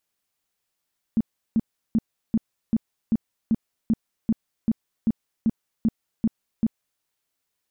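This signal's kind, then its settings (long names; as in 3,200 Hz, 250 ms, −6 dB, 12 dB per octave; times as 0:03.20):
tone bursts 224 Hz, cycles 8, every 0.39 s, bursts 15, −16 dBFS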